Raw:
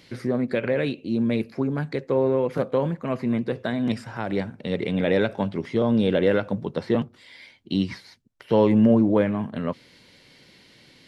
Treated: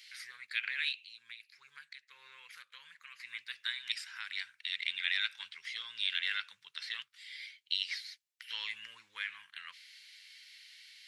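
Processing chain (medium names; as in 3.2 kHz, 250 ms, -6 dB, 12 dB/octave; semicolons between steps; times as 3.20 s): inverse Chebyshev high-pass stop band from 700 Hz, stop band 50 dB; dynamic bell 3.8 kHz, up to +5 dB, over -50 dBFS, Q 1.5; 0.95–3.20 s: compression 3:1, threshold -51 dBFS, peak gain reduction 16 dB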